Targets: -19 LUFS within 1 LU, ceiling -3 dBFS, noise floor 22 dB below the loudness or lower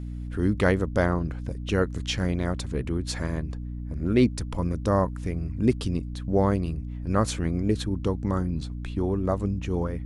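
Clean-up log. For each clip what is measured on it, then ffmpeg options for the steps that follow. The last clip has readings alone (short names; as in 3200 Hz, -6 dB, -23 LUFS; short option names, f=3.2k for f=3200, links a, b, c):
hum 60 Hz; harmonics up to 300 Hz; hum level -31 dBFS; loudness -27.0 LUFS; peak -8.5 dBFS; loudness target -19.0 LUFS
-> -af "bandreject=f=60:t=h:w=4,bandreject=f=120:t=h:w=4,bandreject=f=180:t=h:w=4,bandreject=f=240:t=h:w=4,bandreject=f=300:t=h:w=4"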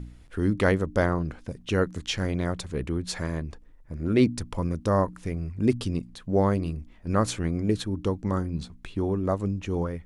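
hum none; loudness -27.5 LUFS; peak -7.5 dBFS; loudness target -19.0 LUFS
-> -af "volume=8.5dB,alimiter=limit=-3dB:level=0:latency=1"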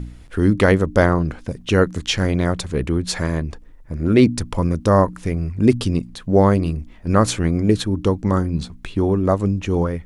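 loudness -19.5 LUFS; peak -3.0 dBFS; noise floor -42 dBFS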